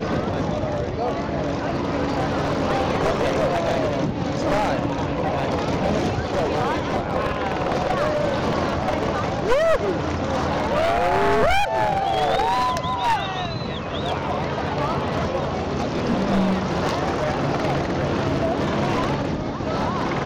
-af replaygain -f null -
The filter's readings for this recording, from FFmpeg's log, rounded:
track_gain = +4.5 dB
track_peak = 0.268